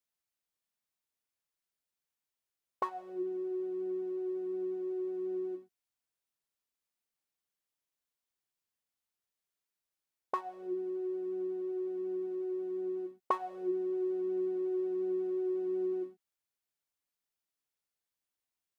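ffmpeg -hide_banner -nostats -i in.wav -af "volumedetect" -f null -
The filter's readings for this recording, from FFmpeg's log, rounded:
mean_volume: -38.6 dB
max_volume: -17.5 dB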